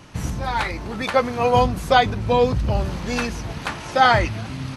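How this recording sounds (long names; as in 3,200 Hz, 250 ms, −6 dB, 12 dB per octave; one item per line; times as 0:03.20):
background noise floor −34 dBFS
spectral slope −4.0 dB per octave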